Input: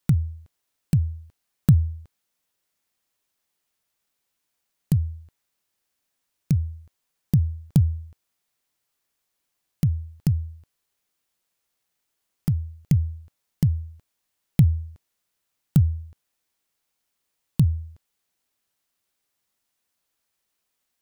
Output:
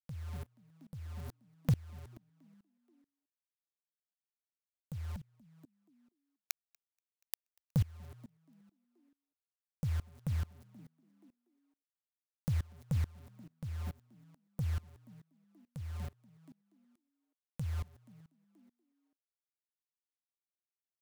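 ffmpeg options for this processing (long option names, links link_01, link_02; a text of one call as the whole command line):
ffmpeg -i in.wav -filter_complex "[0:a]asettb=1/sr,asplit=3[link_01][link_02][link_03];[link_01]atrim=end=5.164[link_04];[link_02]atrim=start=5.16:end=7.72,asetpts=PTS-STARTPTS,afade=type=in:duration=0.004:curve=qsin,afade=type=out:start_time=2.556:duration=0.004:curve=qsin,highpass=frequency=850:width=0.5412,highpass=frequency=850:width=1.3066[link_05];[link_03]atrim=start=7.716[link_06];[link_04][link_05]acrossfade=duration=0.004:curve1=hsin:curve2=qsin[link_07];[link_07][link_06]acrossfade=duration=0.004:curve1=qsin:curve2=hsin,acompressor=threshold=-27dB:ratio=6,asoftclip=type=tanh:threshold=-14.5dB,acrusher=bits=7:mix=0:aa=0.000001,asoftclip=type=hard:threshold=-24dB,asplit=6[link_08][link_09][link_10][link_11][link_12][link_13];[link_09]adelay=239,afreqshift=40,volume=-20dB[link_14];[link_10]adelay=478,afreqshift=80,volume=-24.9dB[link_15];[link_11]adelay=717,afreqshift=120,volume=-29.8dB[link_16];[link_12]adelay=956,afreqshift=160,volume=-34.6dB[link_17];[link_13]adelay=1195,afreqshift=200,volume=-39.5dB[link_18];[link_08][link_14][link_15][link_16][link_17][link_18]amix=inputs=6:normalize=0,aeval=exprs='val(0)*pow(10,-25*if(lt(mod(-2.3*n/s,1),2*abs(-2.3)/1000),1-mod(-2.3*n/s,1)/(2*abs(-2.3)/1000),(mod(-2.3*n/s,1)-2*abs(-2.3)/1000)/(1-2*abs(-2.3)/1000))/20)':channel_layout=same,volume=4dB" out.wav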